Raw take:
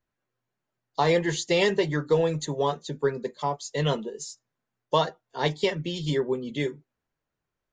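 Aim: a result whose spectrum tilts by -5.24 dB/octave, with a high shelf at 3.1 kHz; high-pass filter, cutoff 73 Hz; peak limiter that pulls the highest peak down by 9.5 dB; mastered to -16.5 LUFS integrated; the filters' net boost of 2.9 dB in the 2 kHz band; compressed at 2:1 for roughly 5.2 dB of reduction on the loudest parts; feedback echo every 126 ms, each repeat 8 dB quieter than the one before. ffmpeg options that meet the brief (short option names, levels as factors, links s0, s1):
-af "highpass=73,equalizer=f=2000:t=o:g=5.5,highshelf=f=3100:g=-6.5,acompressor=threshold=0.0447:ratio=2,alimiter=limit=0.075:level=0:latency=1,aecho=1:1:126|252|378|504|630:0.398|0.159|0.0637|0.0255|0.0102,volume=7.08"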